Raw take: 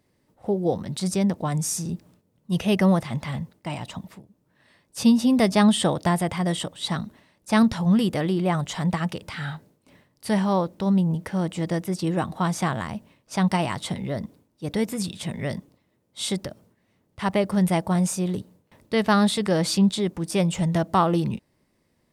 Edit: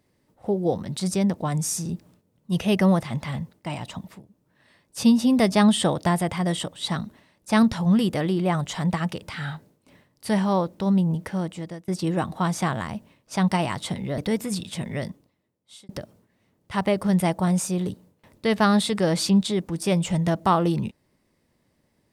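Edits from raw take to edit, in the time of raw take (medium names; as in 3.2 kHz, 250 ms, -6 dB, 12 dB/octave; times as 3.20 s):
11.26–11.88 s: fade out, to -23 dB
14.18–14.66 s: delete
15.38–16.37 s: fade out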